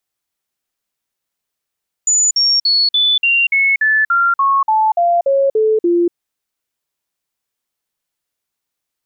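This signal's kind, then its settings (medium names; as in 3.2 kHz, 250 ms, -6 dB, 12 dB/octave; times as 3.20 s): stepped sine 6.97 kHz down, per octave 3, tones 14, 0.24 s, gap 0.05 s -10 dBFS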